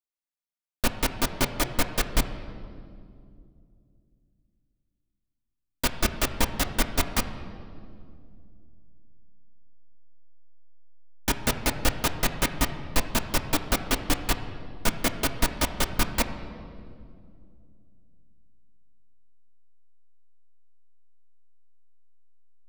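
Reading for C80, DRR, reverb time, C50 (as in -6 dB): 11.0 dB, 5.0 dB, 2.3 s, 10.0 dB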